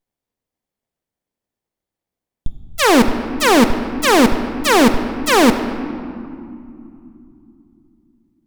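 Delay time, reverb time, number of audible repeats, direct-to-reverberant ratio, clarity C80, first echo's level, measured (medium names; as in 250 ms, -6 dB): no echo, 2.7 s, no echo, 7.5 dB, 10.0 dB, no echo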